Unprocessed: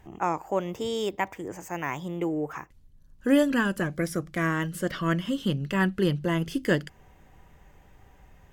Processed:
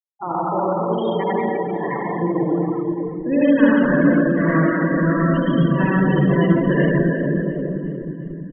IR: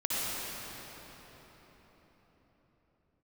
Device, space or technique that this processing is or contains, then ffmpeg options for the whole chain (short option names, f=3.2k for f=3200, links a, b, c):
cathedral: -filter_complex "[1:a]atrim=start_sample=2205[a];[0:a][a]afir=irnorm=-1:irlink=0,afftfilt=real='re*gte(hypot(re,im),0.112)':imag='im*gte(hypot(re,im),0.112)':win_size=1024:overlap=0.75,aecho=1:1:356|712|1068|1424|1780:0.158|0.0903|0.0515|0.0294|0.0167"